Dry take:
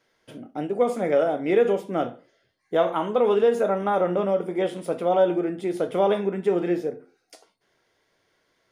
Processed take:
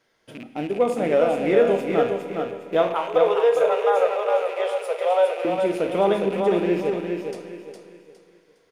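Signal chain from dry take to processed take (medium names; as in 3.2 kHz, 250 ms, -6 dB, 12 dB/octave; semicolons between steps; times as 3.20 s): rattle on loud lows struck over -40 dBFS, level -31 dBFS; 2.94–5.45 s: steep high-pass 420 Hz 96 dB/octave; feedback delay 410 ms, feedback 32%, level -5 dB; reverberation RT60 2.6 s, pre-delay 34 ms, DRR 10.5 dB; trim +1 dB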